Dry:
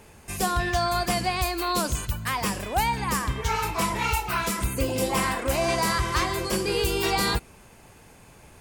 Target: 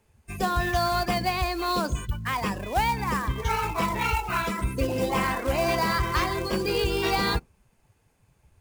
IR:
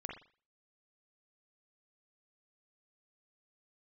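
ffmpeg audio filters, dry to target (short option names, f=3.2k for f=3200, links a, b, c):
-filter_complex "[0:a]acrossover=split=4700[a][b];[b]acompressor=threshold=-36dB:ratio=4:attack=1:release=60[c];[a][c]amix=inputs=2:normalize=0,afftdn=nr=18:nf=-36,acrossover=split=270[d][e];[e]acrusher=bits=3:mode=log:mix=0:aa=0.000001[f];[d][f]amix=inputs=2:normalize=0"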